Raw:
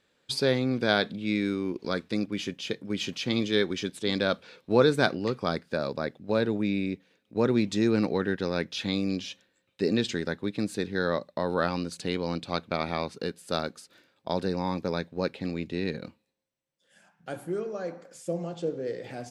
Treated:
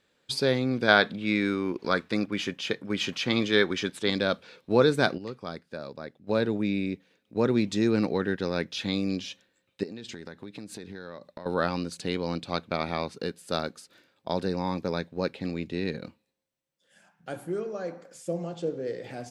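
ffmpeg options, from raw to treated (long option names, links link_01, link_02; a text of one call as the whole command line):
ffmpeg -i in.wav -filter_complex "[0:a]asettb=1/sr,asplit=3[link_01][link_02][link_03];[link_01]atrim=end=0.884[link_04];[link_02]atrim=start=0.88:end=4.1,asetpts=PTS-STARTPTS,afade=type=in:duration=0.004:curve=qsin,afade=type=out:start_time=3.216:duration=0.004:curve=qsin,equalizer=frequency=1300:width=0.65:gain=8[link_05];[link_03]atrim=start=4.096[link_06];[link_04][link_05]acrossfade=duration=0.004:curve1=hsin:curve2=qsin[link_07];[link_07][link_06]acrossfade=duration=0.004:curve1=qsin:curve2=hsin,asettb=1/sr,asplit=3[link_08][link_09][link_10];[link_08]atrim=end=9.834[link_11];[link_09]atrim=start=9.83:end=11.46,asetpts=PTS-STARTPTS,afade=type=in:duration=0.004:curve=qsin,afade=type=out:start_time=1.626:duration=0.004:curve=qsin,acompressor=threshold=-36dB:ratio=10:attack=3.2:release=140:knee=1:detection=peak[link_12];[link_10]atrim=start=11.456[link_13];[link_11][link_12]acrossfade=duration=0.004:curve1=hsin:curve2=qsin[link_14];[link_14][link_13]acrossfade=duration=0.004:curve1=qsin:curve2=hsin,asplit=3[link_15][link_16][link_17];[link_15]atrim=end=5.182[link_18];[link_16]atrim=start=5.178:end=6.272,asetpts=PTS-STARTPTS,volume=-8.5dB[link_19];[link_17]atrim=start=6.268[link_20];[link_18][link_19]acrossfade=duration=0.004:curve1=hsin:curve2=hsin[link_21];[link_21][link_20]acrossfade=duration=0.004:curve1=hsin:curve2=hsin" out.wav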